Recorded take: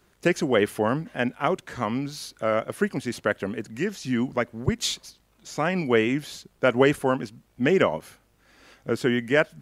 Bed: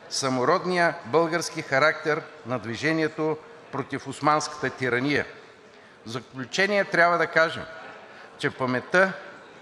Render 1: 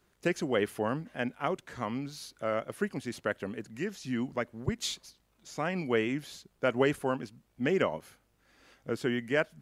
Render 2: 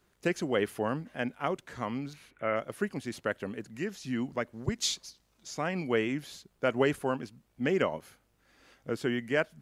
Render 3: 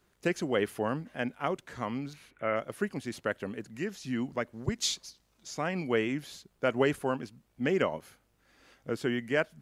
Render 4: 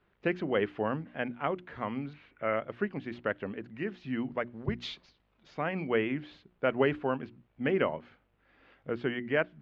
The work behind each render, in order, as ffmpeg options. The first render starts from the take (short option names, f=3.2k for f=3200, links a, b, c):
-af "volume=-7.5dB"
-filter_complex "[0:a]asettb=1/sr,asplit=3[a][b][c];[a]atrim=end=2.134[d];[b]atrim=start=2.13:end=2.56,asetpts=PTS-STARTPTS,afade=t=in:d=0.004:c=qsin,afade=t=out:st=0.426:d=0.004:c=qsin,highshelf=f=3.3k:t=q:w=3:g=-12[e];[c]atrim=start=2.556[f];[d][e]acrossfade=d=0.004:c1=hsin:c2=qsin[g];[g][f]acrossfade=d=0.004:c1=qsin:c2=hsin,asettb=1/sr,asplit=3[h][i][j];[h]atrim=end=4.534[k];[i]atrim=start=4.53:end=5.55,asetpts=PTS-STARTPTS,afade=t=in:d=0.004:c=qsin,afade=t=out:st=1.016:d=0.004:c=qsin,equalizer=f=5.6k:w=1.2:g=6.5[l];[j]atrim=start=5.546[m];[k][l]acrossfade=d=0.004:c1=hsin:c2=qsin[n];[n][m]acrossfade=d=0.004:c1=qsin:c2=hsin"
-af anull
-af "lowpass=f=3.1k:w=0.5412,lowpass=f=3.1k:w=1.3066,bandreject=f=60:t=h:w=6,bandreject=f=120:t=h:w=6,bandreject=f=180:t=h:w=6,bandreject=f=240:t=h:w=6,bandreject=f=300:t=h:w=6,bandreject=f=360:t=h:w=6"